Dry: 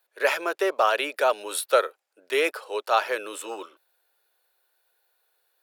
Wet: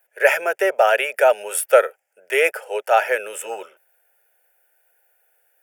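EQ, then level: static phaser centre 1.1 kHz, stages 6; +8.5 dB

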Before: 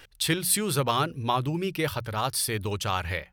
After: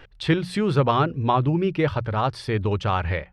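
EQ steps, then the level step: tape spacing loss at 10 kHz 33 dB; +8.0 dB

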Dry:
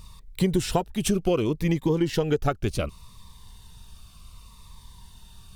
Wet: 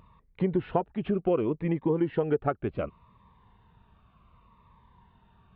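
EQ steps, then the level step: Gaussian low-pass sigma 4.4 samples; high-pass 260 Hz 6 dB/octave; 0.0 dB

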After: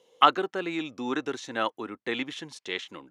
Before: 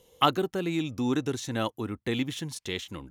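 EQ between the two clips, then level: high-pass 320 Hz 12 dB/octave; dynamic bell 1.5 kHz, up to +7 dB, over -43 dBFS, Q 0.79; distance through air 80 m; 0.0 dB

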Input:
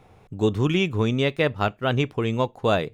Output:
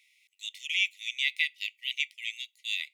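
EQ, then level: brick-wall FIR high-pass 1.9 kHz; +1.5 dB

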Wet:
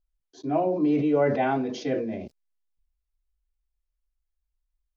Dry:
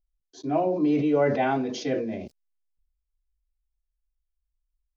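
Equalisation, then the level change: treble shelf 3.9 kHz -6.5 dB; 0.0 dB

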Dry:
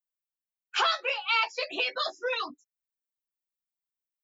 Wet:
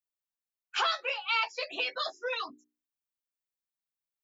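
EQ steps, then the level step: peaking EQ 370 Hz -3.5 dB 0.45 oct; hum notches 60/120/180/240/300/360/420 Hz; -3.0 dB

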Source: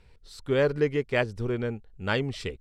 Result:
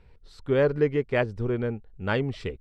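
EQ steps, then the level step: low-pass 1.8 kHz 6 dB/octave; +2.0 dB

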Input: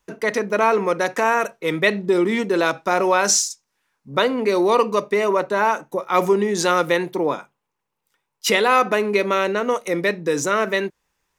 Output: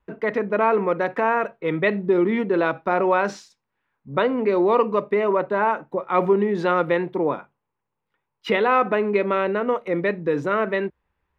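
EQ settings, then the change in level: distance through air 470 m; peaking EQ 71 Hz +10.5 dB 0.77 oct; 0.0 dB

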